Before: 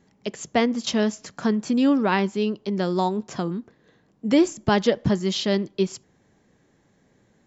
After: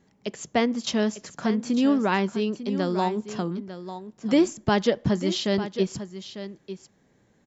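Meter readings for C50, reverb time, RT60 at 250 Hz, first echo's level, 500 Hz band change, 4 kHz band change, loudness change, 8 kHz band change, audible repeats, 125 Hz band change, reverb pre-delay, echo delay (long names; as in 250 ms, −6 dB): no reverb audible, no reverb audible, no reverb audible, −12.0 dB, −1.5 dB, −1.5 dB, −2.0 dB, can't be measured, 1, −2.0 dB, no reverb audible, 898 ms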